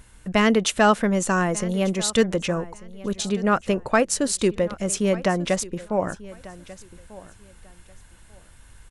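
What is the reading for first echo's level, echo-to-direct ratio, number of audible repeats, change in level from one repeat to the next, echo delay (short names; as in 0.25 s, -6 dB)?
-19.0 dB, -19.0 dB, 2, -13.5 dB, 1.192 s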